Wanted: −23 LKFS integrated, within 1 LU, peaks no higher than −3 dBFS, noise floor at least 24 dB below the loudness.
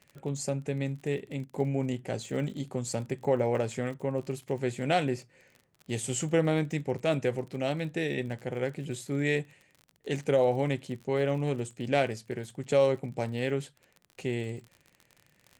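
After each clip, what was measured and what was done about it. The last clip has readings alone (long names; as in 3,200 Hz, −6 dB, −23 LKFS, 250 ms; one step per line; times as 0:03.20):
crackle rate 36 per second; integrated loudness −31.0 LKFS; sample peak −12.5 dBFS; target loudness −23.0 LKFS
→ click removal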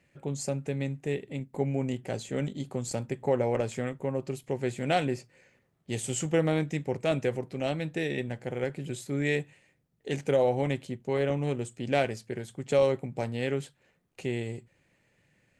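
crackle rate 0.064 per second; integrated loudness −31.0 LKFS; sample peak −12.5 dBFS; target loudness −23.0 LKFS
→ level +8 dB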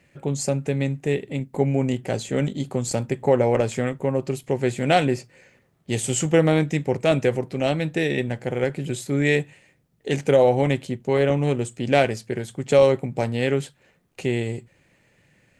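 integrated loudness −23.0 LKFS; sample peak −4.5 dBFS; background noise floor −63 dBFS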